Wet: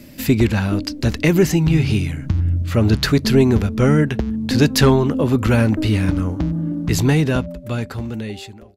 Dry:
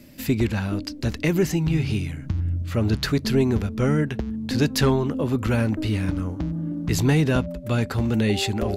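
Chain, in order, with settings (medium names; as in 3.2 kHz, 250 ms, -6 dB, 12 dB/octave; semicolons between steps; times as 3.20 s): fade out at the end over 2.33 s; trim +6.5 dB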